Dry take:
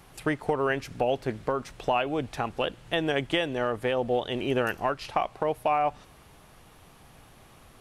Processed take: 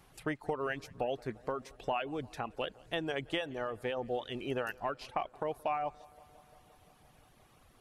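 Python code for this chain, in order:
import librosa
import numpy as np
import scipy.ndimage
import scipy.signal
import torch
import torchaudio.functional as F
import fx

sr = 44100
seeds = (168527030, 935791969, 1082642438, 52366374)

p1 = fx.dereverb_blind(x, sr, rt60_s=0.78)
p2 = p1 + fx.echo_filtered(p1, sr, ms=174, feedback_pct=78, hz=3200.0, wet_db=-24.0, dry=0)
y = p2 * librosa.db_to_amplitude(-8.0)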